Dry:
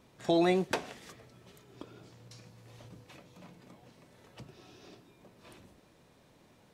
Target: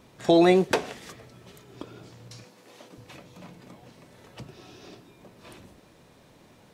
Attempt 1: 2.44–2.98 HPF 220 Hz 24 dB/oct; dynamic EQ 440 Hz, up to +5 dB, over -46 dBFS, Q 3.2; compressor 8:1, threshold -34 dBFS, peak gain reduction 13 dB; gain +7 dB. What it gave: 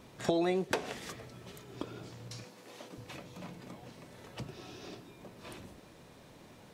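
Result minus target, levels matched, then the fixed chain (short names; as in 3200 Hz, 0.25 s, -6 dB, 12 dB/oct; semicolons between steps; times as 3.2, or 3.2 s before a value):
compressor: peak gain reduction +13 dB
2.44–2.98 HPF 220 Hz 24 dB/oct; dynamic EQ 440 Hz, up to +5 dB, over -46 dBFS, Q 3.2; gain +7 dB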